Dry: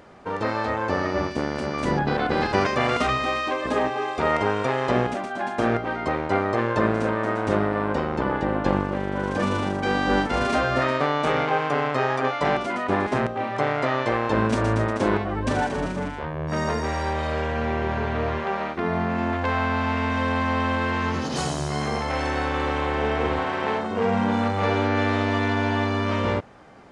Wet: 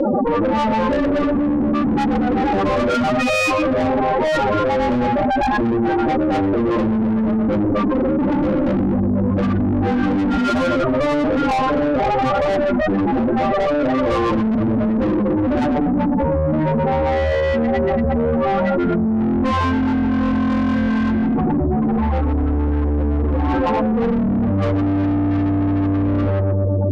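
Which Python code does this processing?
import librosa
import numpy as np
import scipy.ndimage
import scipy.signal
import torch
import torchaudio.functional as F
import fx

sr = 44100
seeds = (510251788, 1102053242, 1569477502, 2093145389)

y = fx.tracing_dist(x, sr, depth_ms=0.096)
y = fx.highpass(y, sr, hz=82.0, slope=6)
y = fx.echo_feedback(y, sr, ms=123, feedback_pct=58, wet_db=-6.5)
y = fx.spec_topn(y, sr, count=8)
y = scipy.signal.sosfilt(scipy.signal.butter(2, 3500.0, 'lowpass', fs=sr, output='sos'), y)
y = y + 0.86 * np.pad(y, (int(3.6 * sr / 1000.0), 0))[:len(y)]
y = fx.tube_stage(y, sr, drive_db=30.0, bias=0.4)
y = fx.low_shelf(y, sr, hz=380.0, db=11.5)
y = fx.env_flatten(y, sr, amount_pct=100)
y = y * 10.0 ** (4.5 / 20.0)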